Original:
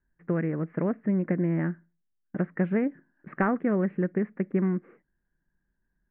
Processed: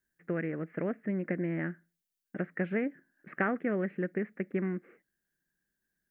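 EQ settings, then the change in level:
spectral tilt +2.5 dB per octave
low-shelf EQ 97 Hz −8.5 dB
parametric band 1,000 Hz −10 dB 0.67 octaves
0.0 dB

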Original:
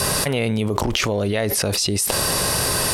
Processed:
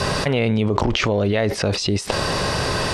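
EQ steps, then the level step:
high-frequency loss of the air 130 metres
+2.5 dB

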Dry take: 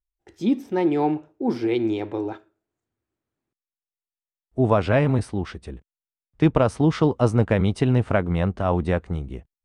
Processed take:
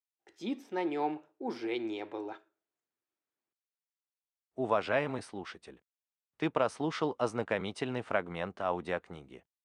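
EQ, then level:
meter weighting curve A
−7.0 dB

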